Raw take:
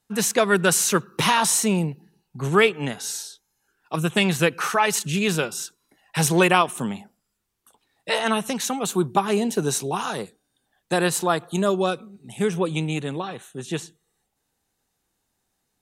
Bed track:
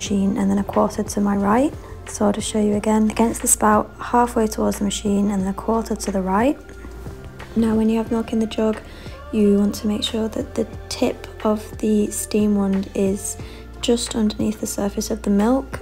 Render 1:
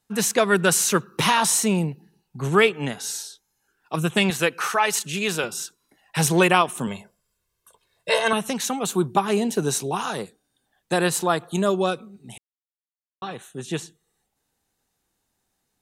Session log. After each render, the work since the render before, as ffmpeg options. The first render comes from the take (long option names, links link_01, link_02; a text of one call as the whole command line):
ffmpeg -i in.wav -filter_complex "[0:a]asettb=1/sr,asplit=3[link_01][link_02][link_03];[link_01]atrim=end=4.304[link_04];[link_02]atrim=start=4.3:end=5.44,asetpts=PTS-STARTPTS,afade=type=in:duration=0.004:curve=qsin,afade=type=out:start_time=1.136:duration=0.004:curve=qsin,highpass=frequency=350:poles=1[link_05];[link_03]atrim=start=5.436[link_06];[link_04][link_05]acrossfade=duration=0.004:curve1=hsin:curve2=qsin[link_07];[link_07][link_06]acrossfade=duration=0.004:curve1=qsin:curve2=hsin,asettb=1/sr,asplit=3[link_08][link_09][link_10];[link_08]atrim=end=6.874[link_11];[link_09]atrim=start=6.87:end=8.33,asetpts=PTS-STARTPTS,afade=type=in:duration=0.004:curve=qsin,afade=type=out:start_time=1.456:duration=0.004:curve=qsin,aecho=1:1:1.9:0.82,atrim=end_sample=64386[link_12];[link_10]atrim=start=8.326[link_13];[link_11][link_12]acrossfade=duration=0.004:curve1=hsin:curve2=qsin[link_14];[link_14][link_13]acrossfade=duration=0.004:curve1=qsin:curve2=hsin,asplit=3[link_15][link_16][link_17];[link_15]atrim=end=12.38,asetpts=PTS-STARTPTS,afade=type=out:start_time=12.376:duration=0.004:curve=hsin[link_18];[link_16]atrim=start=12.38:end=13.22,asetpts=PTS-STARTPTS,volume=0[link_19];[link_17]atrim=start=13.22,asetpts=PTS-STARTPTS,afade=type=in:duration=0.004:curve=hsin[link_20];[link_18][link_19][link_20]concat=n=3:v=0:a=1" out.wav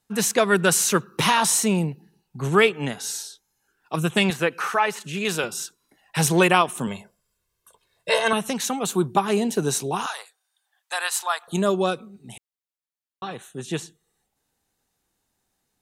ffmpeg -i in.wav -filter_complex "[0:a]asettb=1/sr,asplit=3[link_01][link_02][link_03];[link_01]atrim=end=4.334[link_04];[link_02]atrim=start=4.33:end=5.25,asetpts=PTS-STARTPTS,afade=type=in:duration=0.004:curve=qsin,afade=type=out:start_time=0.916:duration=0.004:curve=qsin,acrossover=split=2600[link_05][link_06];[link_06]acompressor=threshold=-37dB:ratio=4:attack=1:release=60[link_07];[link_05][link_07]amix=inputs=2:normalize=0[link_08];[link_03]atrim=start=5.246[link_09];[link_04][link_08]acrossfade=duration=0.004:curve1=hsin:curve2=qsin[link_10];[link_10][link_09]acrossfade=duration=0.004:curve1=qsin:curve2=hsin,asettb=1/sr,asplit=3[link_11][link_12][link_13];[link_11]atrim=end=10.064[link_14];[link_12]atrim=start=10.06:end=11.48,asetpts=PTS-STARTPTS,afade=type=in:duration=0.004:curve=qsin,afade=type=out:start_time=1.416:duration=0.004:curve=qsin,highpass=frequency=830:width=0.5412,highpass=frequency=830:width=1.3066[link_15];[link_13]atrim=start=11.476[link_16];[link_14][link_15]acrossfade=duration=0.004:curve1=hsin:curve2=qsin[link_17];[link_17][link_16]acrossfade=duration=0.004:curve1=qsin:curve2=hsin" out.wav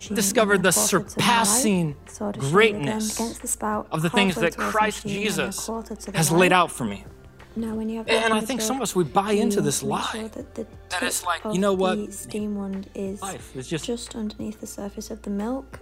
ffmpeg -i in.wav -i bed.wav -filter_complex "[1:a]volume=-10.5dB[link_01];[0:a][link_01]amix=inputs=2:normalize=0" out.wav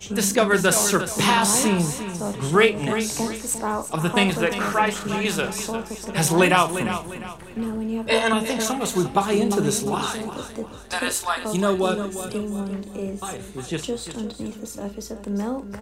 ffmpeg -i in.wav -filter_complex "[0:a]asplit=2[link_01][link_02];[link_02]adelay=40,volume=-11dB[link_03];[link_01][link_03]amix=inputs=2:normalize=0,aecho=1:1:351|702|1053|1404:0.282|0.104|0.0386|0.0143" out.wav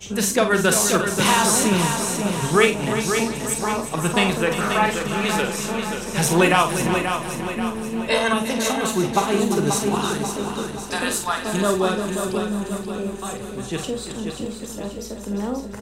ffmpeg -i in.wav -filter_complex "[0:a]asplit=2[link_01][link_02];[link_02]adelay=48,volume=-8.5dB[link_03];[link_01][link_03]amix=inputs=2:normalize=0,aecho=1:1:534|1068|1602|2136|2670|3204:0.447|0.219|0.107|0.0526|0.0258|0.0126" out.wav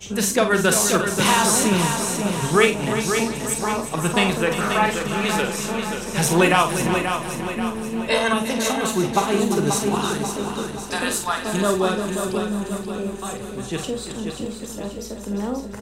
ffmpeg -i in.wav -af anull out.wav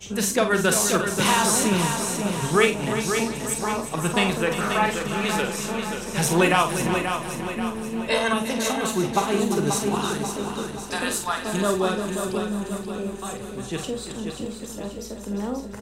ffmpeg -i in.wav -af "volume=-2.5dB" out.wav